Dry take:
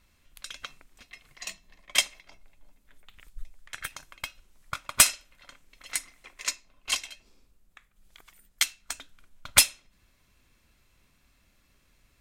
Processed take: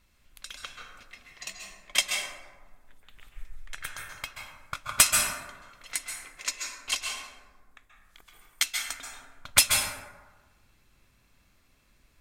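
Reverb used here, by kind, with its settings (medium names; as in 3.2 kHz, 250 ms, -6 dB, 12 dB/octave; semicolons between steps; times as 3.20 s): plate-style reverb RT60 1.3 s, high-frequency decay 0.4×, pre-delay 120 ms, DRR 0.5 dB; trim -1.5 dB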